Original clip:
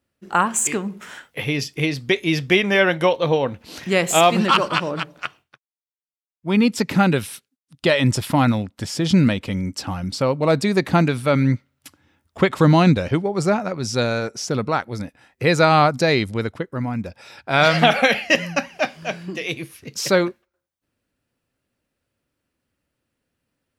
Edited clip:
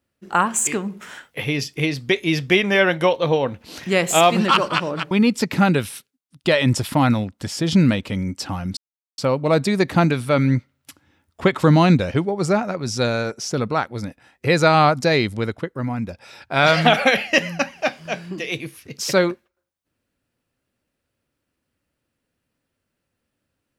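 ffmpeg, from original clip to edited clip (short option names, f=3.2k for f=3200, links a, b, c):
-filter_complex "[0:a]asplit=3[a][b][c];[a]atrim=end=5.112[d];[b]atrim=start=6.488:end=10.15,asetpts=PTS-STARTPTS,afade=t=out:st=3.658:d=0.004:c=hsin,apad=pad_dur=0.41[e];[c]atrim=start=10.15,asetpts=PTS-STARTPTS,afade=t=in:d=0.004:c=hsin[f];[e][f]concat=n=2:v=0:a=1[g];[d][g]acrossfade=d=0.004:c1=hsin:c2=hsin"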